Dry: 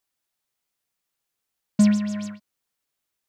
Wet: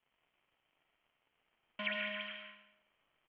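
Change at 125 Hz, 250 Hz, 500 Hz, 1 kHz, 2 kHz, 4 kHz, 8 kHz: under -30 dB, -31.0 dB, -9.0 dB, -5.0 dB, +3.0 dB, -0.5 dB, under -40 dB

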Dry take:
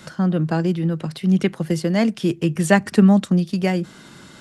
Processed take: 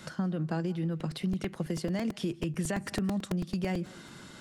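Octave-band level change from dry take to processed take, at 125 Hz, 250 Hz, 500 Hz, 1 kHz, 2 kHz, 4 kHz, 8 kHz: -12.5 dB, -14.0 dB, -14.0 dB, -14.5 dB, -14.5 dB, -9.5 dB, -9.0 dB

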